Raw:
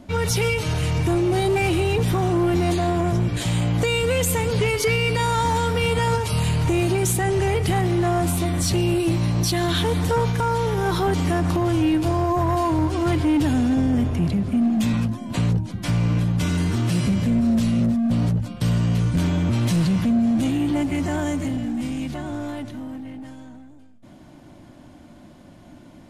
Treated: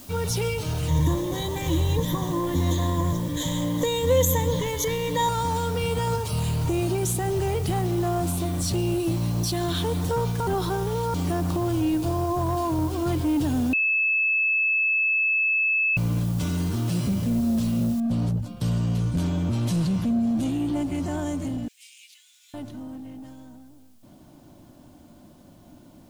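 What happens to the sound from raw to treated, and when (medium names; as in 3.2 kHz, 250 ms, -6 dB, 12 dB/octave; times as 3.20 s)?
0.88–5.29 s: rippled EQ curve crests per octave 1.1, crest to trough 17 dB
10.47–11.14 s: reverse
13.73–15.97 s: bleep 2.61 kHz -11 dBFS
18.00 s: noise floor step -42 dB -62 dB
21.68–22.54 s: Chebyshev high-pass 2.3 kHz, order 4
whole clip: peaking EQ 2 kHz -7.5 dB 0.9 oct; trim -4 dB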